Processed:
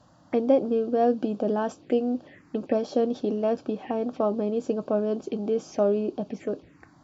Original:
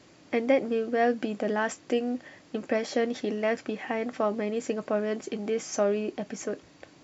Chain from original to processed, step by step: high shelf 2900 Hz -12 dB; envelope phaser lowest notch 350 Hz, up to 2000 Hz, full sweep at -30.5 dBFS; gain +4 dB

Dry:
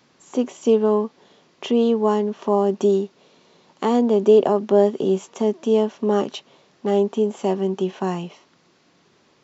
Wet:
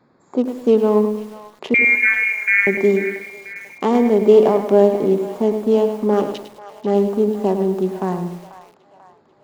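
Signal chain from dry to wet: Wiener smoothing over 15 samples; 1.74–2.67 inverted band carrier 2600 Hz; split-band echo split 640 Hz, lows 80 ms, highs 0.49 s, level -13.5 dB; lo-fi delay 0.104 s, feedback 35%, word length 7-bit, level -8.5 dB; gain +2.5 dB

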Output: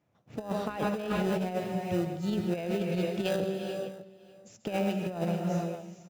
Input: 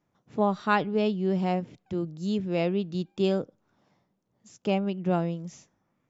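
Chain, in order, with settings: fifteen-band EQ 100 Hz +7 dB, 630 Hz +8 dB, 2500 Hz +6 dB; in parallel at -11 dB: sample-rate reducer 1100 Hz, jitter 0%; on the sum: HPF 55 Hz; de-hum 191.7 Hz, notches 28; on a send: tapped delay 0.135/0.597 s -13/-19.5 dB; on the sum: non-linear reverb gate 0.49 s rising, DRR 7.5 dB; negative-ratio compressor -24 dBFS, ratio -0.5; gain -5 dB

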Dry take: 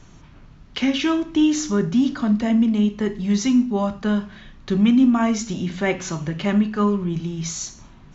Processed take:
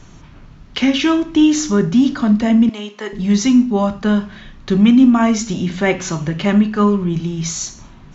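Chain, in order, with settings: 2.69–3.13 HPF 590 Hz 12 dB/oct; gain +5.5 dB

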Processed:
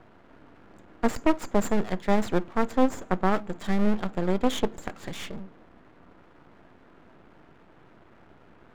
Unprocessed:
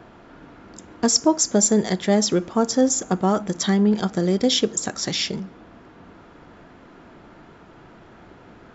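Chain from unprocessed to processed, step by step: added harmonics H 4 -24 dB, 5 -16 dB, 7 -16 dB, 8 -21 dB, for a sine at -5 dBFS; running mean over 8 samples; half-wave rectifier

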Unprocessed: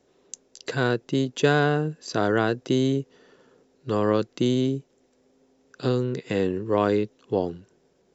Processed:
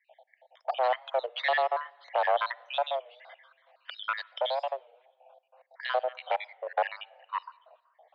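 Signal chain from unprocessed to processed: random spectral dropouts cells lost 70%; 2.88–4.71 tilt +3 dB/oct; in parallel at +1.5 dB: compressor, threshold -35 dBFS, peak gain reduction 15.5 dB; on the sum: one-sided clip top -29.5 dBFS; on a send at -23 dB: reverb RT60 1.4 s, pre-delay 46 ms; on the sum: low-pass opened by the level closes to 2900 Hz, open at -23 dBFS; mistuned SSB +260 Hz 300–3400 Hz; record warp 33 1/3 rpm, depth 160 cents; gain +1.5 dB

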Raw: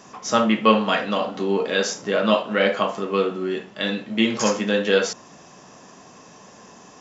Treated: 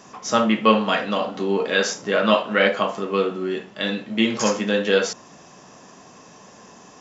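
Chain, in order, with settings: 1.58–2.69 dynamic EQ 1700 Hz, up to +4 dB, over -31 dBFS, Q 0.77

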